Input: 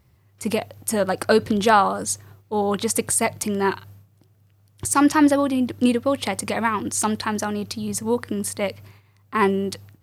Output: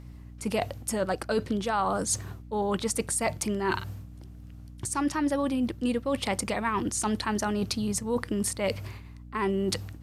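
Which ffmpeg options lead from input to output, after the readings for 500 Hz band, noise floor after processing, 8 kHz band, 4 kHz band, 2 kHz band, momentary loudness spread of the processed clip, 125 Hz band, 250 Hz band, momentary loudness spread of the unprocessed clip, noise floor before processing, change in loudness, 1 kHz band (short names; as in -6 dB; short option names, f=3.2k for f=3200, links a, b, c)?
-7.0 dB, -45 dBFS, -5.5 dB, -5.0 dB, -7.5 dB, 12 LU, -2.5 dB, -7.0 dB, 11 LU, -59 dBFS, -7.0 dB, -8.5 dB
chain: -af "lowpass=11k,areverse,acompressor=threshold=-32dB:ratio=6,areverse,aeval=exprs='val(0)+0.00316*(sin(2*PI*60*n/s)+sin(2*PI*2*60*n/s)/2+sin(2*PI*3*60*n/s)/3+sin(2*PI*4*60*n/s)/4+sin(2*PI*5*60*n/s)/5)':c=same,volume=6dB"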